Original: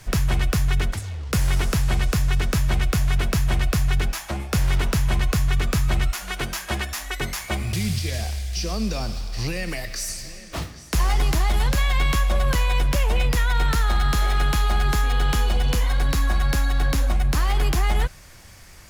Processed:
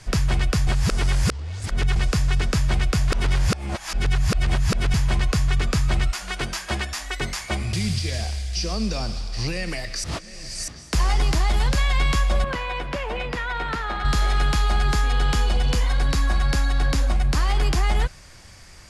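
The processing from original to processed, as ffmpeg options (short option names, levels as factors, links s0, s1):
-filter_complex "[0:a]asettb=1/sr,asplit=3[s0][s1][s2];[s0]atrim=end=12.444[s3];[s1]atrim=start=12.44:end=14.05,asetpts=PTS-STARTPTS,afade=t=in:d=0.004:c=qsin,afade=t=out:st=1.606:d=0.004:c=qsin,acrossover=split=200 3300:gain=0.224 1 0.178[s4][s5][s6];[s4][s5][s6]amix=inputs=3:normalize=0[s7];[s2]atrim=start=14.046[s8];[s3][s7]acrossfade=d=0.004:c1=hsin:c2=qsin[s9];[s9][s8]acrossfade=d=0.004:c1=qsin:c2=hsin,asplit=7[s10][s11][s12][s13][s14][s15][s16];[s10]atrim=end=0.672[s17];[s11]atrim=start=0.668:end=1.962,asetpts=PTS-STARTPTS,areverse[s18];[s12]atrim=start=1.958:end=3.122[s19];[s13]atrim=start=3.118:end=4.942,asetpts=PTS-STARTPTS,areverse[s20];[s14]atrim=start=4.938:end=10.042[s21];[s15]atrim=start=10.038:end=10.682,asetpts=PTS-STARTPTS,areverse[s22];[s16]atrim=start=10.678[s23];[s17][s18]acrossfade=d=0.004:c1=hsin:c2=hsin[s24];[s24][s19]acrossfade=d=0.004:c1=hsin:c2=hsin[s25];[s25][s20]acrossfade=d=0.004:c1=hsin:c2=hsin[s26];[s26][s21]acrossfade=d=0.004:c1=hsin:c2=hsin[s27];[s27][s22]acrossfade=d=0.004:c1=hsin:c2=hsin[s28];[s28][s23]acrossfade=d=0.004:c1=hsin:c2=hsin,lowpass=f=10000:w=0.5412,lowpass=f=10000:w=1.3066,equalizer=f=4800:w=6.8:g=4.5"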